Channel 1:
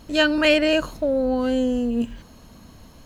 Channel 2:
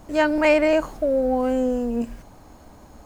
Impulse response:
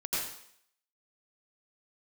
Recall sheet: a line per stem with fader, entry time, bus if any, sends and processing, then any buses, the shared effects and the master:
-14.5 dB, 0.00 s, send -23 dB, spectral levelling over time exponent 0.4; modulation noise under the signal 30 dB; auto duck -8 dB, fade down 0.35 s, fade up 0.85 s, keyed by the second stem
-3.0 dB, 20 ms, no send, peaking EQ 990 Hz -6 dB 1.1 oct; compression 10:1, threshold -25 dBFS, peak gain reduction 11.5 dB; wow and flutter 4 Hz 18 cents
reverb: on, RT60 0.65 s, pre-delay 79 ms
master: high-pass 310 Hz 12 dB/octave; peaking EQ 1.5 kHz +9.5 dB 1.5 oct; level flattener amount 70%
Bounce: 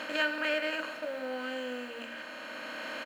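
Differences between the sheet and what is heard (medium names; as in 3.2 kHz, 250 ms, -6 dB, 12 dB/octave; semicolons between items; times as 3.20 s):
stem 2 -3.0 dB -> -14.5 dB; master: missing level flattener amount 70%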